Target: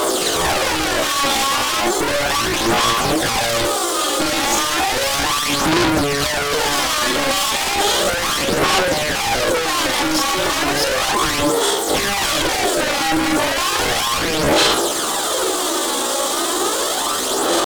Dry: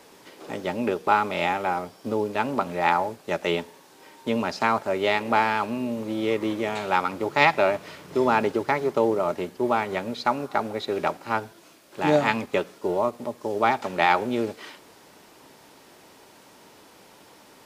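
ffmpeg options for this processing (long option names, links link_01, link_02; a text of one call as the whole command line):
ffmpeg -i in.wav -filter_complex "[0:a]afftfilt=real='re':imag='-im':win_size=4096:overlap=0.75,highpass=frequency=120:width=0.5412,highpass=frequency=120:width=1.3066,acrossover=split=3100[link_01][link_02];[link_02]acompressor=threshold=-53dB:ratio=4:attack=1:release=60[link_03];[link_01][link_03]amix=inputs=2:normalize=0,equalizer=frequency=250:width_type=o:width=0.67:gain=9,equalizer=frequency=2500:width_type=o:width=0.67:gain=10,equalizer=frequency=6300:width_type=o:width=0.67:gain=9,acrossover=split=390|5600[link_04][link_05][link_06];[link_04]alimiter=level_in=2dB:limit=-24dB:level=0:latency=1:release=78,volume=-2dB[link_07];[link_06]acontrast=37[link_08];[link_07][link_05][link_08]amix=inputs=3:normalize=0,equalizer=frequency=1800:width_type=o:width=0.82:gain=-14,asplit=2[link_09][link_10];[link_10]highpass=frequency=720:poles=1,volume=35dB,asoftclip=type=tanh:threshold=-11.5dB[link_11];[link_09][link_11]amix=inputs=2:normalize=0,lowpass=frequency=1900:poles=1,volume=-6dB,asplit=2[link_12][link_13];[link_13]aeval=exprs='0.251*sin(PI/2*4.47*val(0)/0.251)':channel_layout=same,volume=-6dB[link_14];[link_12][link_14]amix=inputs=2:normalize=0,aphaser=in_gain=1:out_gain=1:delay=4.9:decay=0.45:speed=0.34:type=sinusoidal,asetrate=58866,aresample=44100,atempo=0.749154" out.wav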